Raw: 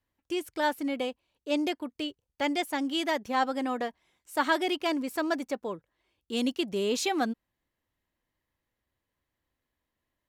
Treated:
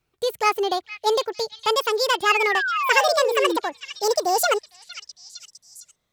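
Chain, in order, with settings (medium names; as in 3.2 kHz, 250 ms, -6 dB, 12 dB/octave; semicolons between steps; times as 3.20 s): gliding tape speed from 136% -> 200%; painted sound fall, 2.29–3.57 s, 310–2900 Hz -32 dBFS; repeats whose band climbs or falls 458 ms, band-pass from 2.9 kHz, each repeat 0.7 oct, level -8.5 dB; trim +8 dB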